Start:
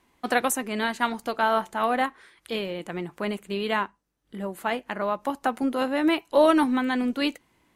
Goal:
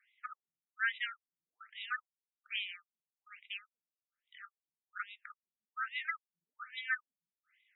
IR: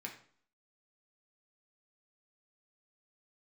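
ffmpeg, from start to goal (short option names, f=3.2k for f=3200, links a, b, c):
-af "afftfilt=real='re*(1-between(b*sr/4096,110,1200))':imag='im*(1-between(b*sr/4096,110,1200))':win_size=4096:overlap=0.75,afftfilt=real='re*between(b*sr/1024,210*pow(2800/210,0.5+0.5*sin(2*PI*1.2*pts/sr))/1.41,210*pow(2800/210,0.5+0.5*sin(2*PI*1.2*pts/sr))*1.41)':imag='im*between(b*sr/1024,210*pow(2800/210,0.5+0.5*sin(2*PI*1.2*pts/sr))/1.41,210*pow(2800/210,0.5+0.5*sin(2*PI*1.2*pts/sr))*1.41)':win_size=1024:overlap=0.75,volume=-1dB"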